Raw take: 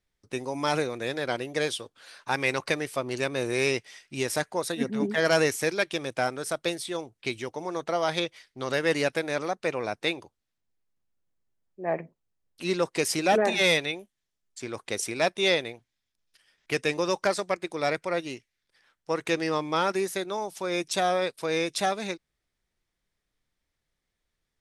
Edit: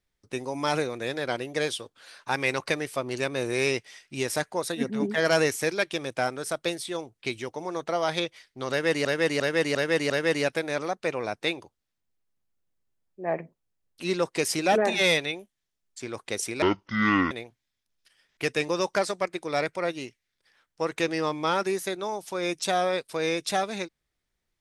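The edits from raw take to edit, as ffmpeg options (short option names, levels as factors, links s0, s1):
-filter_complex "[0:a]asplit=7[s0][s1][s2][s3][s4][s5][s6];[s0]atrim=end=9.052[s7];[s1]atrim=start=8.698:end=9.052[s8];[s2]atrim=start=8.698:end=9.052[s9];[s3]atrim=start=8.698:end=9.052[s10];[s4]atrim=start=8.698:end=15.224[s11];[s5]atrim=start=15.22:end=15.6,asetpts=PTS-STARTPTS,asetrate=24255,aresample=44100,atrim=end_sample=30469,asetpts=PTS-STARTPTS[s12];[s6]atrim=start=15.596[s13];[s7][s8]acrossfade=d=0.004:c1=hsin:c2=hsin[s14];[s14][s9]acrossfade=d=0.004:c1=hsin:c2=hsin[s15];[s15][s10]acrossfade=d=0.004:c1=hsin:c2=hsin[s16];[s16][s11]acrossfade=d=0.004:c1=hsin:c2=hsin[s17];[s17][s12]acrossfade=d=0.004:c1=hsin:c2=hsin[s18];[s18][s13]acrossfade=d=0.004:c1=hsin:c2=hsin"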